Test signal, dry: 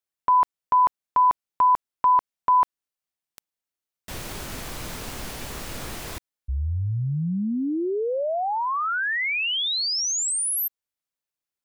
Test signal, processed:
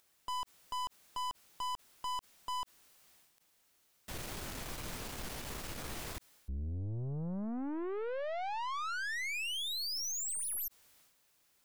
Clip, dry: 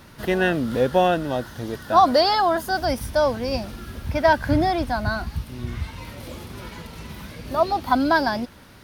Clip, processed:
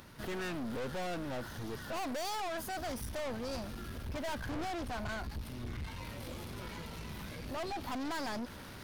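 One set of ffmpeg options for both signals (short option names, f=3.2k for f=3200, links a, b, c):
-af "agate=range=-18dB:threshold=-36dB:ratio=3:release=455:detection=rms,acompressor=mode=upward:threshold=-33dB:ratio=2.5:attack=1.9:release=22:knee=2.83:detection=peak,aeval=exprs='(tanh(35.5*val(0)+0.4)-tanh(0.4))/35.5':c=same,volume=-5.5dB"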